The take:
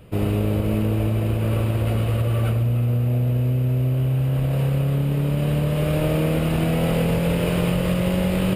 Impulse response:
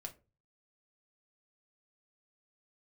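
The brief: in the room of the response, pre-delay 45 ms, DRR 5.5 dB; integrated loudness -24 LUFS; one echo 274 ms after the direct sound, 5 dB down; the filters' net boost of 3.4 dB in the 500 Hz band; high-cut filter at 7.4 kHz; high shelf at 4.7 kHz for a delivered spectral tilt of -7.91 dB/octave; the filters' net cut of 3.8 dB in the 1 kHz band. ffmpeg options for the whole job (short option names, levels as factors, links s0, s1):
-filter_complex "[0:a]lowpass=7400,equalizer=f=500:t=o:g=6,equalizer=f=1000:t=o:g=-8.5,highshelf=f=4700:g=4,aecho=1:1:274:0.562,asplit=2[s0][s1];[1:a]atrim=start_sample=2205,adelay=45[s2];[s1][s2]afir=irnorm=-1:irlink=0,volume=0.794[s3];[s0][s3]amix=inputs=2:normalize=0,volume=0.531"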